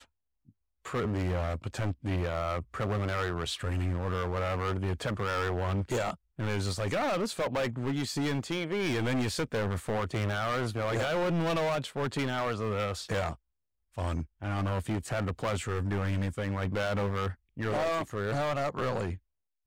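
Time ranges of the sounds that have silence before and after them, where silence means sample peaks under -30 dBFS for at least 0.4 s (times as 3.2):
0.86–13.31
13.98–19.13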